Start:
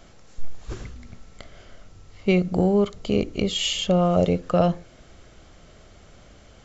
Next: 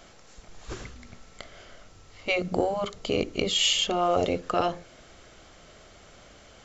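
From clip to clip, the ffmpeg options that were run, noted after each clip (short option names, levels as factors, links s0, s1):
-af "afftfilt=real='re*lt(hypot(re,im),0.708)':imag='im*lt(hypot(re,im),0.708)':win_size=1024:overlap=0.75,lowshelf=f=290:g=-9.5,volume=1.33"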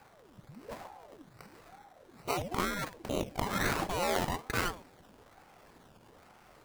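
-af "acrusher=samples=18:mix=1:aa=0.000001:lfo=1:lforange=10.8:lforate=1.2,aeval=exprs='val(0)*sin(2*PI*470*n/s+470*0.75/1.1*sin(2*PI*1.1*n/s))':c=same,volume=0.631"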